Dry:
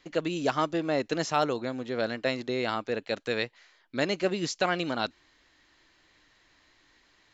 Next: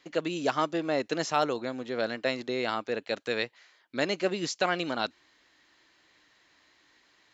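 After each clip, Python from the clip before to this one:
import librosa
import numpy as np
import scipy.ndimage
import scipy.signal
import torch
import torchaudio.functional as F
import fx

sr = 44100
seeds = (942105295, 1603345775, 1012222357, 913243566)

y = fx.highpass(x, sr, hz=190.0, slope=6)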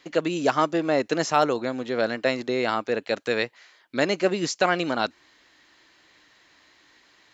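y = fx.dynamic_eq(x, sr, hz=3500.0, q=1.5, threshold_db=-45.0, ratio=4.0, max_db=-4)
y = y * librosa.db_to_amplitude(6.0)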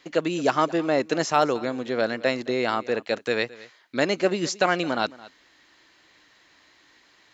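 y = x + 10.0 ** (-20.0 / 20.0) * np.pad(x, (int(218 * sr / 1000.0), 0))[:len(x)]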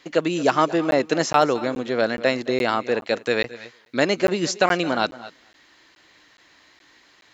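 y = x + 10.0 ** (-19.5 / 20.0) * np.pad(x, (int(235 * sr / 1000.0), 0))[:len(x)]
y = fx.buffer_crackle(y, sr, first_s=0.91, period_s=0.42, block=512, kind='zero')
y = y * librosa.db_to_amplitude(3.0)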